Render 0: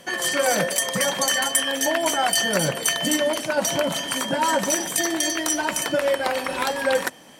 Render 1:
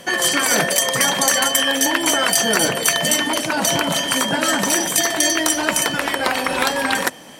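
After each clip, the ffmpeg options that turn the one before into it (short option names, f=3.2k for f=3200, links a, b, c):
-af "afftfilt=real='re*lt(hypot(re,im),0.447)':imag='im*lt(hypot(re,im),0.447)':win_size=1024:overlap=0.75,volume=7dB"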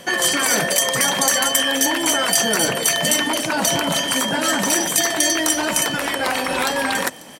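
-filter_complex "[0:a]acrossover=split=5700[a][b];[a]alimiter=limit=-11dB:level=0:latency=1:release=16[c];[b]aecho=1:1:542:0.15[d];[c][d]amix=inputs=2:normalize=0"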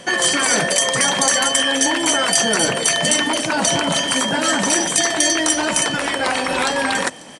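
-af "aresample=22050,aresample=44100,volume=1.5dB"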